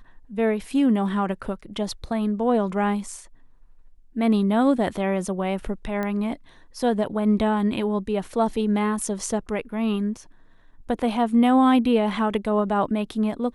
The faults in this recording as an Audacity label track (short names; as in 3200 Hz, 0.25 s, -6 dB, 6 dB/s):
6.030000	6.030000	pop -16 dBFS